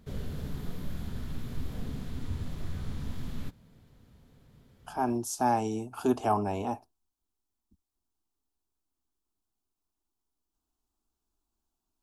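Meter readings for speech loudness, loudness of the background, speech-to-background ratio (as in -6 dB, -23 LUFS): -30.0 LUFS, -40.0 LUFS, 10.0 dB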